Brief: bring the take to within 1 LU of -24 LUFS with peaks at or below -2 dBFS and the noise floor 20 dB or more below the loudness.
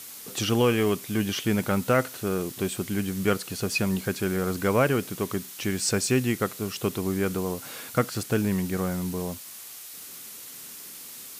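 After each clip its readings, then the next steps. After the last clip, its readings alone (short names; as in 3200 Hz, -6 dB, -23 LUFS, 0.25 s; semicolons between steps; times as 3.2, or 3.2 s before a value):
noise floor -42 dBFS; noise floor target -47 dBFS; loudness -27.0 LUFS; peak -10.0 dBFS; loudness target -24.0 LUFS
-> denoiser 6 dB, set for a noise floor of -42 dBFS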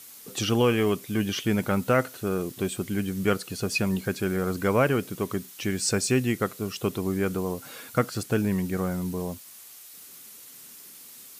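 noise floor -47 dBFS; loudness -27.0 LUFS; peak -10.0 dBFS; loudness target -24.0 LUFS
-> gain +3 dB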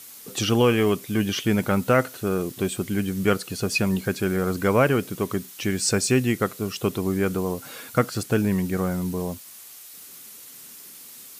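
loudness -24.0 LUFS; peak -7.0 dBFS; noise floor -44 dBFS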